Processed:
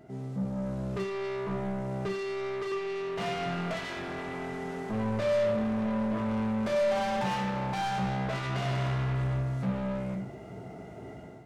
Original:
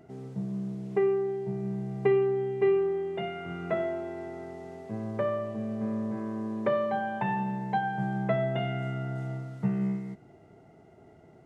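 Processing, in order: 1.47–2.72 s: high-pass 200 Hz 12 dB/octave; peak limiter -24.5 dBFS, peak gain reduction 11 dB; level rider gain up to 10 dB; saturation -32 dBFS, distortion -6 dB; reverberation, pre-delay 3 ms, DRR 1 dB

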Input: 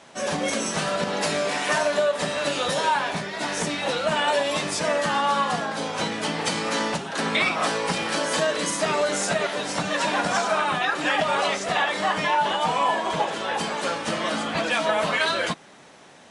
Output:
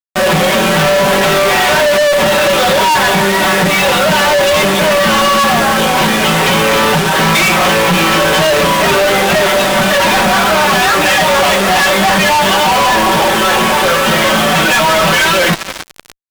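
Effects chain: flange 0.13 Hz, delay 5.6 ms, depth 5.5 ms, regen +41%; resampled via 8 kHz; thinning echo 291 ms, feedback 64%, high-pass 550 Hz, level -18 dB; added noise pink -62 dBFS; comb 5.3 ms, depth 92%; fuzz box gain 46 dB, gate -38 dBFS; trim +4.5 dB

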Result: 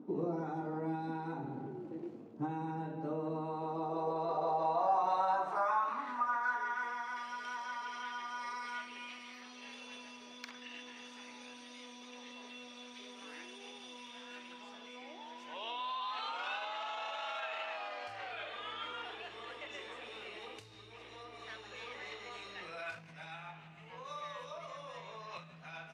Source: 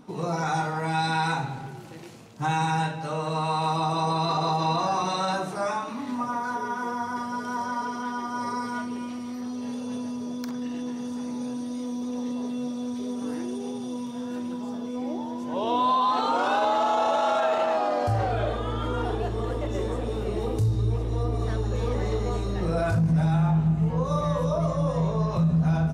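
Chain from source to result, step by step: bass shelf 250 Hz -5 dB; compression 4:1, threshold -30 dBFS, peak gain reduction 8.5 dB; band-pass sweep 310 Hz -> 2.5 kHz, 3.35–7.27 s; trim +5.5 dB

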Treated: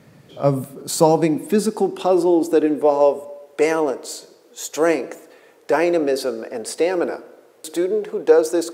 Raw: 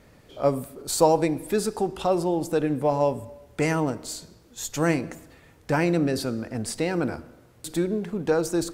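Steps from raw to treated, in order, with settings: high-pass sweep 140 Hz -> 440 Hz, 0.40–3.16 s; trim +3 dB

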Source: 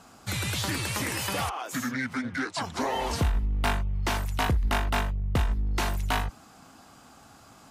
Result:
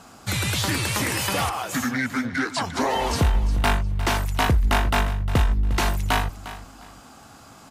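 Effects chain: feedback delay 354 ms, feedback 23%, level -14.5 dB; trim +5.5 dB

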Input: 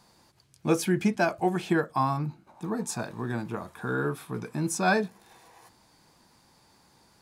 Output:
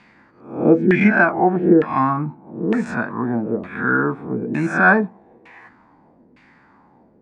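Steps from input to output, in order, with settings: reverse spectral sustain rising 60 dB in 0.50 s; ten-band graphic EQ 250 Hz +11 dB, 2 kHz +10 dB, 8 kHz +9 dB; LFO low-pass saw down 1.1 Hz 410–2600 Hz; trim +1 dB

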